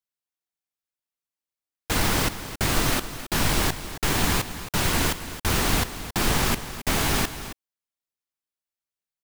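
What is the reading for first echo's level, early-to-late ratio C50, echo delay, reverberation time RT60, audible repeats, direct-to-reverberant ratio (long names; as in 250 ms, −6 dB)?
−12.5 dB, no reverb audible, 270 ms, no reverb audible, 1, no reverb audible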